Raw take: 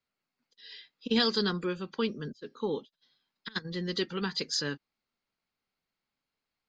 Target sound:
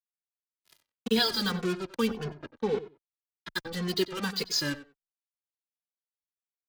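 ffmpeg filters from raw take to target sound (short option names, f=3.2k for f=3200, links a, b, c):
-filter_complex "[0:a]acrusher=bits=5:mix=0:aa=0.5,asettb=1/sr,asplit=3[a][b][c];[a]atrim=end=2.374[d];[b]atrim=start=2.37:end=3.54,asetpts=PTS-STARTPTS,afade=t=in:d=0.004:c=qsin,afade=t=out:st=1.166:d=0.004:c=qsin,adynamicsmooth=sensitivity=3:basefreq=3.3k[e];[c]atrim=start=3.536[f];[d][e]acrossfade=d=0.004:c1=hsin:c2=qsin[g];[g][f]acrossfade=d=0.004:c1=qsin:c2=hsin,asplit=2[h][i];[i]adelay=93,lowpass=f=3.1k:p=1,volume=-14dB,asplit=2[j][k];[k]adelay=93,lowpass=f=3.1k:p=1,volume=0.18[l];[j][l]amix=inputs=2:normalize=0[m];[h][m]amix=inputs=2:normalize=0,asplit=2[n][o];[o]adelay=2.3,afreqshift=-1.8[p];[n][p]amix=inputs=2:normalize=1,volume=4.5dB"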